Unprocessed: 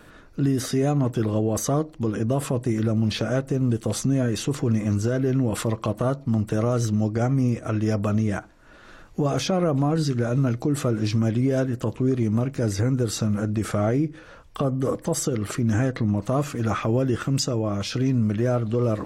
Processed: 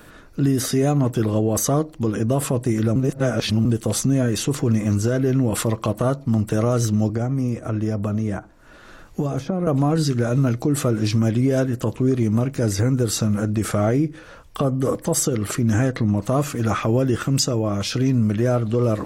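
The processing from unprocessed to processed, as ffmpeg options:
ffmpeg -i in.wav -filter_complex "[0:a]asettb=1/sr,asplit=3[link_01][link_02][link_03];[link_01]atrim=end=7.094[link_04];[link_02]atrim=start=7.09:end=9.67,asetpts=PTS-STARTPTS,afade=type=in:duration=0.004:curve=qsin,afade=type=out:start_time=2.576:duration=0.004:curve=qsin,acrossover=split=330|1500[link_05][link_06][link_07];[link_05]acompressor=threshold=-24dB:ratio=4[link_08];[link_06]acompressor=threshold=-32dB:ratio=4[link_09];[link_07]acompressor=threshold=-52dB:ratio=4[link_10];[link_08][link_09][link_10]amix=inputs=3:normalize=0[link_11];[link_03]atrim=start=9.666[link_12];[link_04][link_11]acrossfade=duration=0.004:curve1=hsin:curve2=qsin[link_13];[link_13][link_12]acrossfade=duration=0.004:curve1=qsin:curve2=hsin,asplit=3[link_14][link_15][link_16];[link_14]atrim=end=2.962[link_17];[link_15]atrim=start=2.958:end=3.652,asetpts=PTS-STARTPTS,areverse[link_18];[link_16]atrim=start=3.648[link_19];[link_17][link_18]acrossfade=duration=0.004:curve1=hsin:curve2=hsin[link_20];[link_20][link_19]acrossfade=duration=0.004:curve1=hsin:curve2=hsin,highshelf=frequency=9100:gain=9,volume=3dB" out.wav

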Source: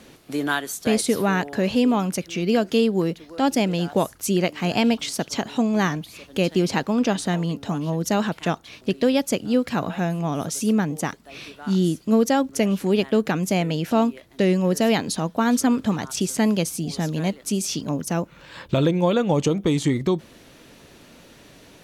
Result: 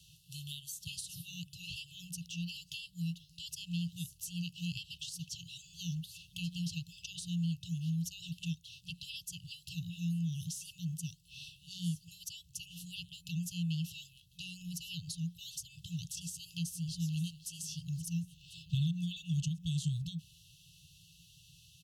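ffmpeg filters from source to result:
ffmpeg -i in.wav -filter_complex "[0:a]asplit=2[link_01][link_02];[link_02]afade=type=in:start_time=16.47:duration=0.01,afade=type=out:start_time=17.5:duration=0.01,aecho=0:1:520|1040|1560|2080|2600:0.125893|0.0755355|0.0453213|0.0271928|0.0163157[link_03];[link_01][link_03]amix=inputs=2:normalize=0,afftfilt=real='re*(1-between(b*sr/4096,180,2600))':imag='im*(1-between(b*sr/4096,180,2600))':win_size=4096:overlap=0.75,highpass=46,acrossover=split=210[link_04][link_05];[link_05]acompressor=threshold=-34dB:ratio=5[link_06];[link_04][link_06]amix=inputs=2:normalize=0,volume=-7dB" out.wav

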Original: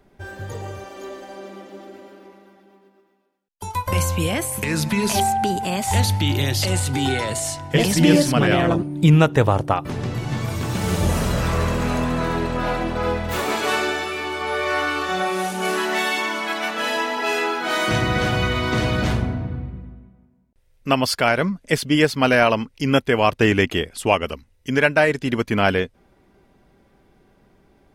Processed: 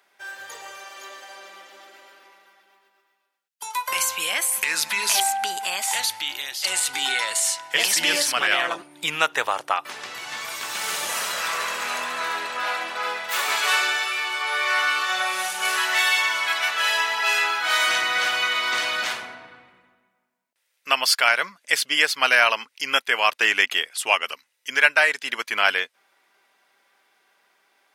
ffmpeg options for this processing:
ffmpeg -i in.wav -filter_complex "[0:a]asplit=2[link_01][link_02];[link_01]atrim=end=6.64,asetpts=PTS-STARTPTS,afade=type=out:start_time=5.65:duration=0.99:silence=0.266073[link_03];[link_02]atrim=start=6.64,asetpts=PTS-STARTPTS,afade=type=in:duration=0.004:curve=hsin:silence=0.266073[link_04];[link_03][link_04]concat=n=2:v=0:a=1,highpass=1300,volume=4.5dB" out.wav

